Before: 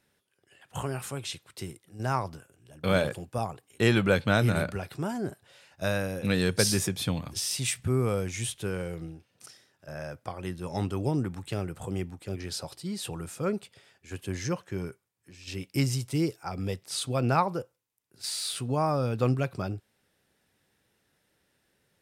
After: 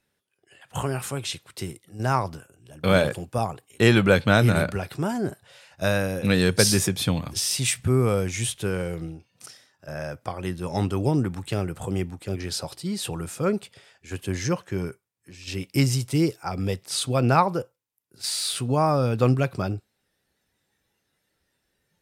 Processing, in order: spectral noise reduction 9 dB; gain +5.5 dB

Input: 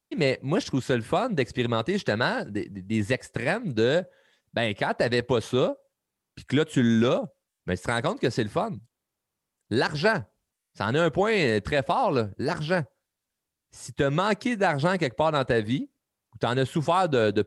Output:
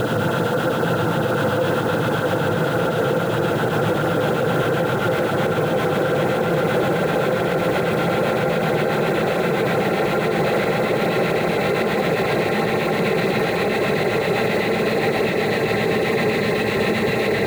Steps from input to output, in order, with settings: Wiener smoothing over 9 samples; Paulstretch 32×, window 1.00 s, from 10.88; in parallel at -10.5 dB: requantised 6-bit, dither triangular; on the sum: LFO notch sine 7.7 Hz 330–3500 Hz; on a send: delay with a stepping band-pass 0.282 s, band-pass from 630 Hz, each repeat 0.7 oct, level -4 dB; on the sum: limiter -16 dBFS, peak gain reduction 8 dB; gain +5 dB

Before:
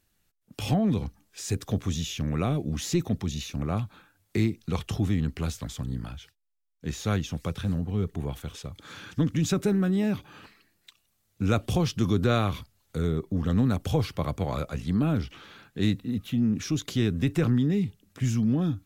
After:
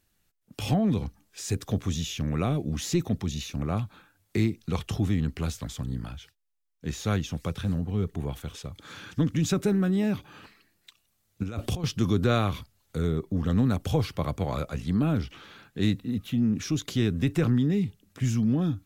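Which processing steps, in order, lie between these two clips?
11.43–11.84 negative-ratio compressor -29 dBFS, ratio -0.5

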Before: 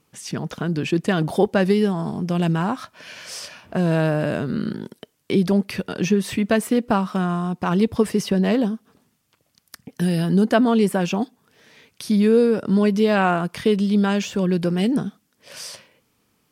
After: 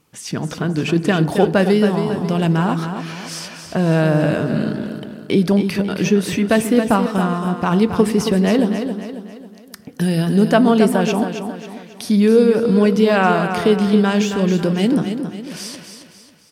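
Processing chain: feedback echo 0.272 s, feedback 44%, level -8 dB; FDN reverb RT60 1.4 s, high-frequency decay 0.35×, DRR 14 dB; gain +3.5 dB

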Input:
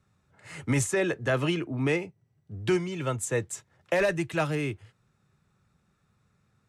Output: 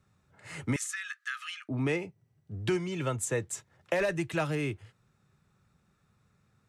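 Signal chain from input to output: compressor 2:1, threshold -28 dBFS, peak gain reduction 4.5 dB; 0.76–1.69 rippled Chebyshev high-pass 1200 Hz, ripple 3 dB

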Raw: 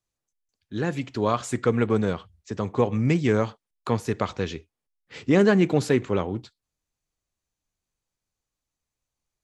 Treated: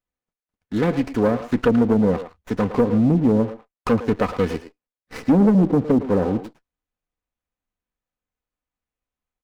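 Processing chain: treble ducked by the level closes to 380 Hz, closed at -17 dBFS; comb 4 ms, depth 46%; sample leveller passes 2; speakerphone echo 0.11 s, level -10 dB; running maximum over 9 samples

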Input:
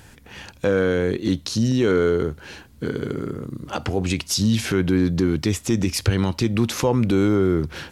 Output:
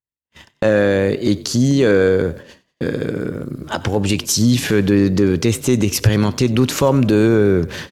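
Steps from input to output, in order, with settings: gate -36 dBFS, range -58 dB; pitch shift +1.5 st; frequency-shifting echo 93 ms, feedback 45%, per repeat +35 Hz, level -20 dB; gain +5 dB

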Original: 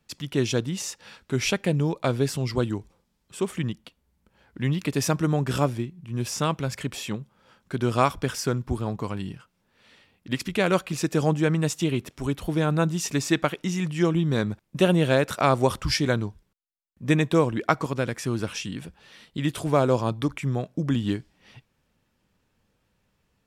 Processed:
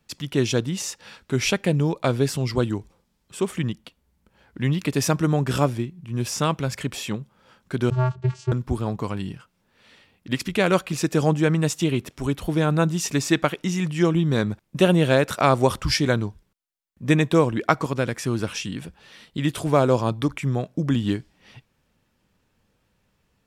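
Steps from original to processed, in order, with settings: 7.9–8.52 vocoder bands 8, square 127 Hz; gain +2.5 dB

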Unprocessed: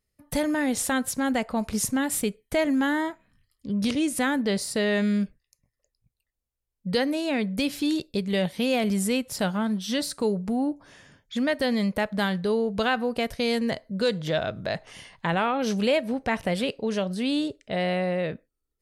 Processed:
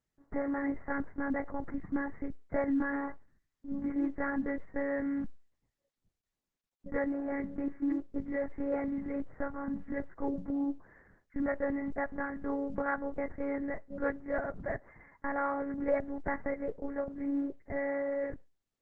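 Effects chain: Chebyshev low-pass 2100 Hz, order 8; monotone LPC vocoder at 8 kHz 280 Hz; gain -5.5 dB; Opus 12 kbps 48000 Hz

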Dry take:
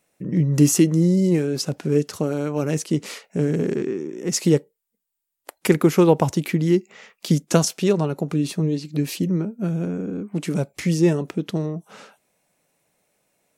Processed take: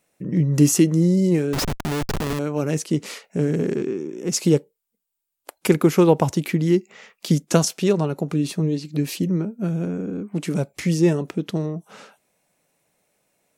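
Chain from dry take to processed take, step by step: 1.53–2.39 Schmitt trigger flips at -30 dBFS; 3.76–5.85 notch 1900 Hz, Q 9.2

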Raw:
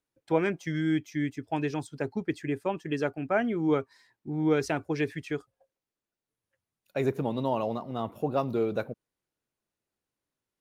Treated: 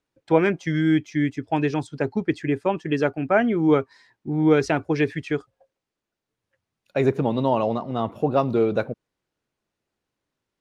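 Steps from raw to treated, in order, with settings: air absorption 65 m; gain +7.5 dB

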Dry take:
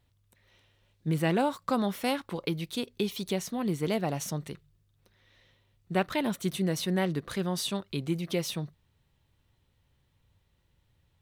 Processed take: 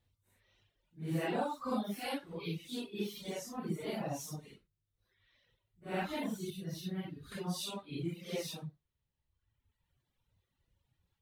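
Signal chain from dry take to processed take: phase scrambler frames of 0.2 s; reverb removal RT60 1.5 s; 6.5–7.32 graphic EQ 125/250/500/1000/2000/8000 Hz +5/-5/-9/-10/-7/-10 dB; gain -6 dB

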